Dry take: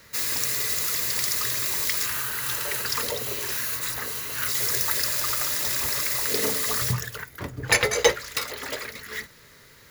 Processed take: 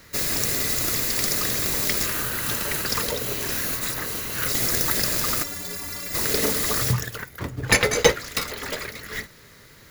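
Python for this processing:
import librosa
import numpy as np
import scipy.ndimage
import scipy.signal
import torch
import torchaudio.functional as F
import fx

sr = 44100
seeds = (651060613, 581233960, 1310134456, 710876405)

p1 = fx.sample_hold(x, sr, seeds[0], rate_hz=1000.0, jitter_pct=0)
p2 = x + (p1 * librosa.db_to_amplitude(-9.0))
p3 = fx.stiff_resonator(p2, sr, f0_hz=85.0, decay_s=0.29, stiffness=0.03, at=(5.42, 6.13), fade=0.02)
y = p3 * librosa.db_to_amplitude(1.5)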